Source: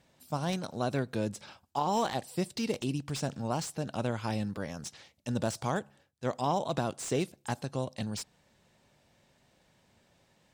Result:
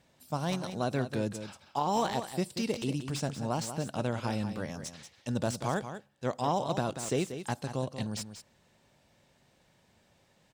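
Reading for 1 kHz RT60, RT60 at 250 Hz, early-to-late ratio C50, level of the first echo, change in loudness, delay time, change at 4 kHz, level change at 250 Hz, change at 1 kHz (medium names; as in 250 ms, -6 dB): no reverb, no reverb, no reverb, -10.0 dB, +0.5 dB, 186 ms, +0.5 dB, +0.5 dB, +0.5 dB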